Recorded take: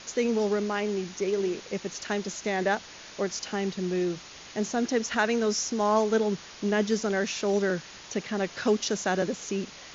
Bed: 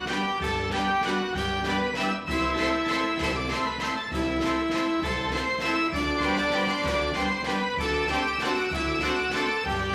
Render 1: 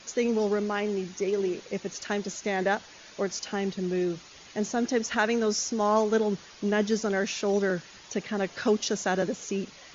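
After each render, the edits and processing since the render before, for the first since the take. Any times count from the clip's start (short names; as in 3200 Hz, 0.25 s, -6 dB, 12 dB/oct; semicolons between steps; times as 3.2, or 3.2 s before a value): denoiser 7 dB, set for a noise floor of -46 dBFS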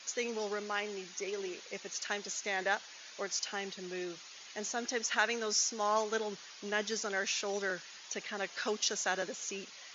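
HPF 1500 Hz 6 dB/oct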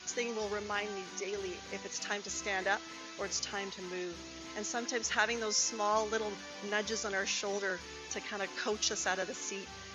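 add bed -23 dB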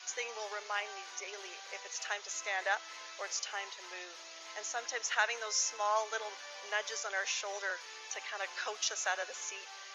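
HPF 570 Hz 24 dB/oct; dynamic EQ 4600 Hz, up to -4 dB, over -49 dBFS, Q 2.7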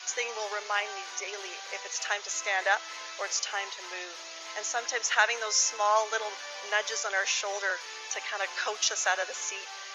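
gain +7 dB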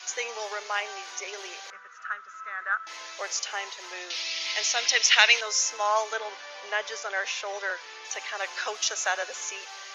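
1.7–2.87 EQ curve 200 Hz 0 dB, 280 Hz -14 dB, 890 Hz -19 dB, 1300 Hz +9 dB, 2200 Hz -15 dB, 4400 Hz -26 dB; 4.1–5.41 band shelf 3400 Hz +13.5 dB; 6.13–8.05 air absorption 100 m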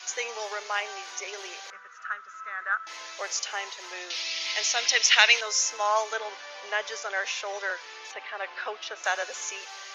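8.11–9.04 air absorption 300 m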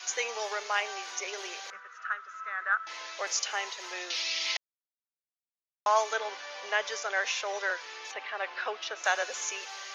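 1.8–3.27 BPF 290–6000 Hz; 4.57–5.86 mute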